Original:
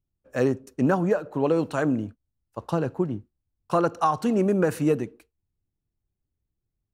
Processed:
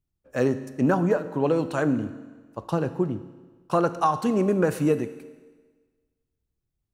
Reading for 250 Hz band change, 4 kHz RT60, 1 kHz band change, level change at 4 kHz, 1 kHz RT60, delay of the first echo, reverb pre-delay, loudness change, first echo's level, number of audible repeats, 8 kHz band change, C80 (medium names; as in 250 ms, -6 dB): +0.5 dB, 1.4 s, +0.5 dB, +0.5 dB, 1.4 s, no echo, 5 ms, 0.0 dB, no echo, no echo, +0.5 dB, 15.0 dB